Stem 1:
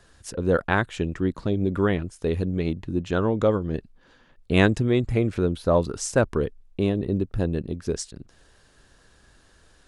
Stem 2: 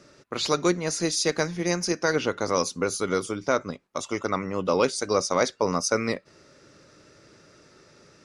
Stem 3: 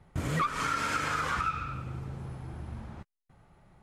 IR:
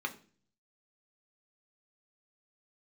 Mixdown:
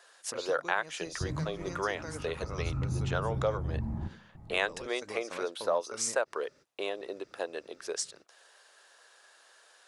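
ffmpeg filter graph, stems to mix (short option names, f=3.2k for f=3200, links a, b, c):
-filter_complex "[0:a]highpass=f=540:w=0.5412,highpass=f=540:w=1.3066,volume=1dB,asplit=2[a][b];[1:a]acompressor=threshold=-29dB:ratio=6,volume=-10dB[c];[2:a]bass=f=250:g=3,treble=f=4k:g=8,acrossover=split=230[d][e];[e]acompressor=threshold=-41dB:ratio=2[f];[d][f]amix=inputs=2:normalize=0,tiltshelf=f=1.5k:g=9.5,adelay=1050,volume=-5.5dB,afade=t=in:st=2.46:d=0.2:silence=0.316228,asplit=2[g][h];[h]volume=-3.5dB[i];[b]apad=whole_len=363663[j];[c][j]sidechaingate=range=-33dB:threshold=-53dB:ratio=16:detection=peak[k];[3:a]atrim=start_sample=2205[l];[i][l]afir=irnorm=-1:irlink=0[m];[a][k][g][m]amix=inputs=4:normalize=0,acompressor=threshold=-30dB:ratio=2"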